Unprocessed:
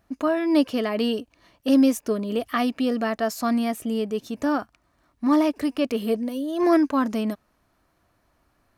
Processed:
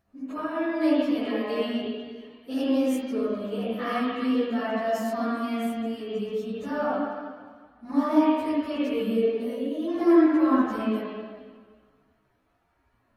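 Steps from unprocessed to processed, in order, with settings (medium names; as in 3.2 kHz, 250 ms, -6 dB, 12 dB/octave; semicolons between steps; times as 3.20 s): spring tank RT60 1.1 s, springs 35/50 ms, chirp 40 ms, DRR -8 dB; plain phase-vocoder stretch 1.5×; trim -8 dB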